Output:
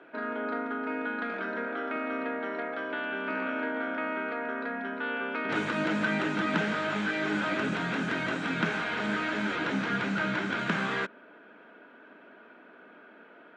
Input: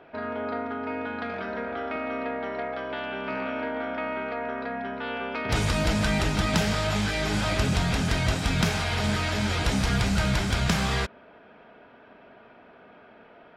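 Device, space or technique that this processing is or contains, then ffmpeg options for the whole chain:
television speaker: -filter_complex "[0:a]acrossover=split=3200[a][b];[b]acompressor=threshold=-48dB:ratio=4:attack=1:release=60[c];[a][c]amix=inputs=2:normalize=0,highpass=f=190:w=0.5412,highpass=f=190:w=1.3066,equalizer=f=310:t=q:w=4:g=6,equalizer=f=740:t=q:w=4:g=-5,equalizer=f=1.5k:t=q:w=4:g=7,equalizer=f=5k:t=q:w=4:g=-7,lowpass=f=8k:w=0.5412,lowpass=f=8k:w=1.3066,asettb=1/sr,asplit=3[d][e][f];[d]atrim=end=9.564[g];[e]atrim=start=9.56:end=10.59,asetpts=PTS-STARTPTS,afade=t=in:d=0.004:c=qsin,afade=t=out:st=1.026:d=0.004:c=qsin,lowpass=7.5k[h];[f]atrim=start=10.586[i];[g][h]acrossfade=d=0.004:c1=hsin:c2=qsin[j];[j][i]acrossfade=d=0.004:c1=qsin:c2=hsin,volume=-2.5dB"

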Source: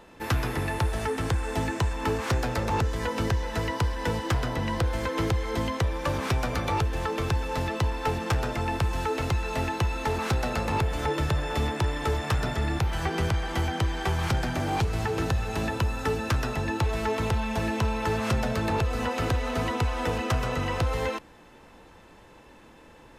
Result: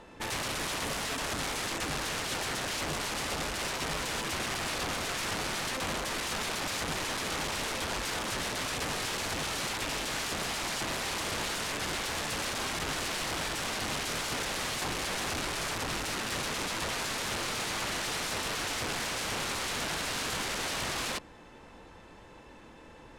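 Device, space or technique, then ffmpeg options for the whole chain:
overflowing digital effects unit: -af "aeval=exprs='(mod(26.6*val(0)+1,2)-1)/26.6':c=same,lowpass=10k"

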